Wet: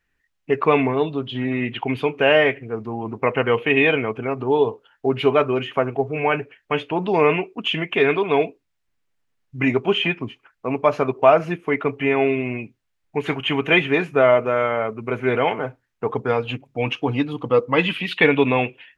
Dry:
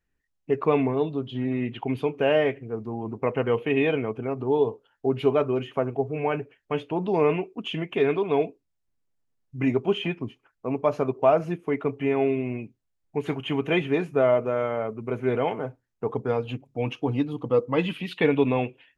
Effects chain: peaking EQ 2.1 kHz +9.5 dB 2.4 oct; trim +2.5 dB

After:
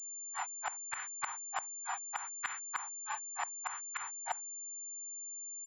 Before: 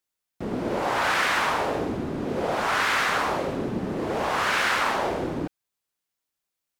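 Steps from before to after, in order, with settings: tempo 1.2×; steep high-pass 750 Hz 96 dB/octave; saturation -16 dBFS, distortion -21 dB; granulator 184 ms, grains 3.3 per s, pitch spread up and down by 0 st; spectral noise reduction 26 dB; inverted gate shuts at -31 dBFS, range -25 dB; class-D stage that switches slowly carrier 7.2 kHz; trim +8 dB

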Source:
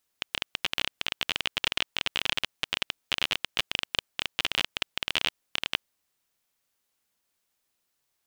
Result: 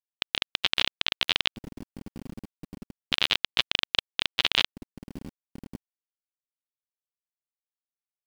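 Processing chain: spectral contrast reduction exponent 0.62; LFO low-pass square 0.32 Hz 240–3800 Hz; bit crusher 8-bit

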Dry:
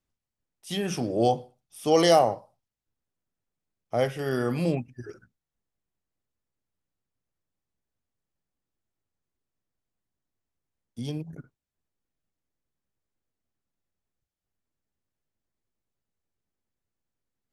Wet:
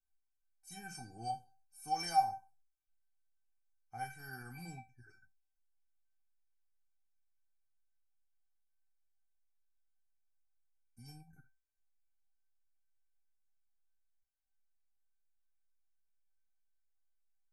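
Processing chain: static phaser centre 1.4 kHz, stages 4; feedback comb 780 Hz, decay 0.23 s, mix 100%; trim +10 dB

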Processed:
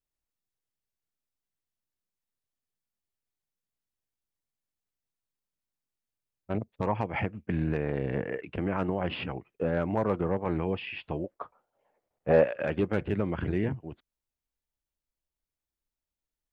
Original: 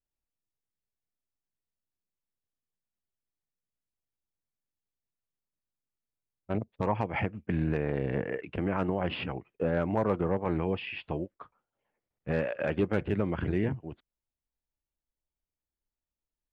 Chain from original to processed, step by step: 11.24–12.44 s: peaking EQ 650 Hz +13 dB 1.7 oct

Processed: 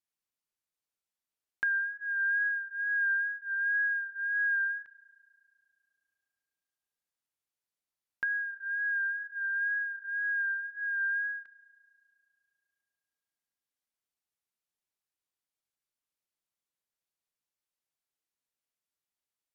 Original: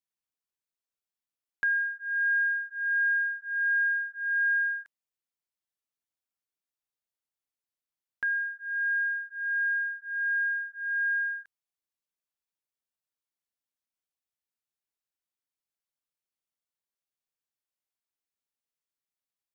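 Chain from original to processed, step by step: wow and flutter 32 cents; spring tank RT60 2.4 s, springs 33 ms, chirp 70 ms, DRR 19.5 dB; low-pass that closes with the level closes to 1.6 kHz, closed at -28.5 dBFS

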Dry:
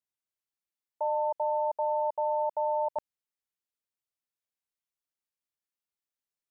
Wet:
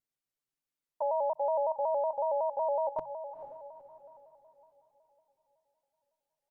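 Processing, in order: bass shelf 480 Hz +7 dB; hum notches 50/100/150 Hz; comb 7.1 ms, depth 91%; on a send: echo that smears into a reverb 471 ms, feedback 44%, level -11 dB; on the sum: vibrato with a chosen wave square 5.4 Hz, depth 100 cents; trim -4 dB

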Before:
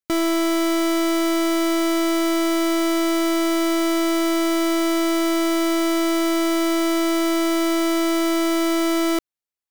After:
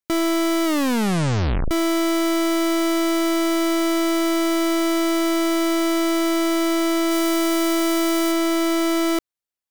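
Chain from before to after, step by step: 0.65 s: tape stop 1.06 s; 7.11–8.32 s: treble shelf 6.6 kHz +5 dB

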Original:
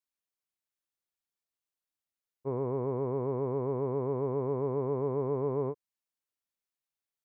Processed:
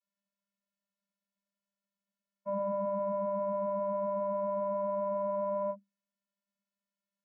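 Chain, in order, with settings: vocoder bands 32, square 199 Hz

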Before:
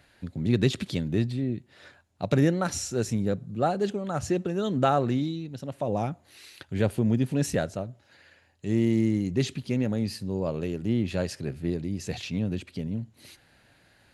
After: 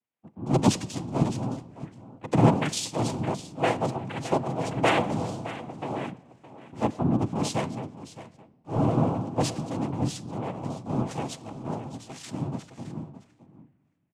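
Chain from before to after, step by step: level-controlled noise filter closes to 1.2 kHz, open at -23.5 dBFS; noise-vocoded speech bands 4; delay 616 ms -9 dB; reverberation RT60 3.2 s, pre-delay 6 ms, DRR 12 dB; three bands expanded up and down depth 70%; trim -2 dB

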